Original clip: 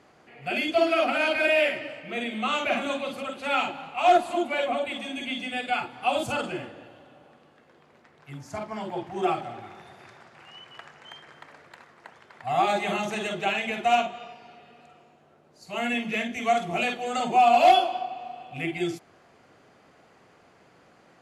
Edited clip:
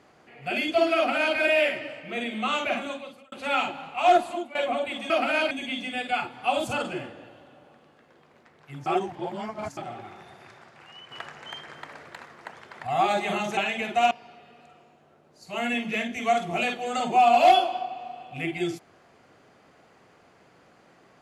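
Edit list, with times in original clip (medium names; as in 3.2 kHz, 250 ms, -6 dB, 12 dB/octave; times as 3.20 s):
0.96–1.37 s: copy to 5.10 s
2.59–3.32 s: fade out
4.21–4.55 s: fade out, to -18 dB
8.45–9.36 s: reverse
10.70–12.46 s: gain +6 dB
13.16–13.46 s: delete
14.00–14.31 s: delete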